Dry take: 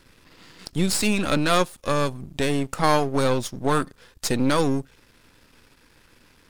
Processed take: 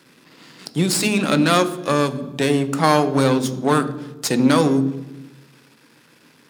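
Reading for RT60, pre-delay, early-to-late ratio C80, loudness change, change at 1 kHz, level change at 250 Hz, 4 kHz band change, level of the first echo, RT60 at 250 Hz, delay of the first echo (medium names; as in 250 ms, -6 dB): 1.1 s, 3 ms, 15.5 dB, +4.5 dB, +4.0 dB, +6.5 dB, +3.5 dB, no echo, 1.3 s, no echo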